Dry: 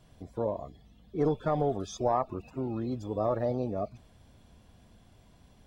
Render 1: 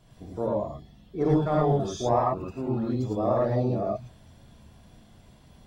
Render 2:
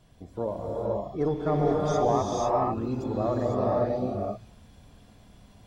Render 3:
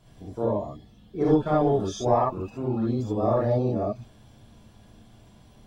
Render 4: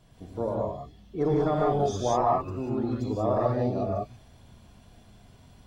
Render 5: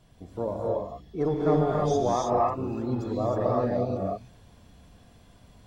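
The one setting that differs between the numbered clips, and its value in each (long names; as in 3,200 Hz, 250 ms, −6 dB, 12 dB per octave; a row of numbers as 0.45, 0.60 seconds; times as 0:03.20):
reverb whose tail is shaped and stops, gate: 130, 530, 90, 210, 340 milliseconds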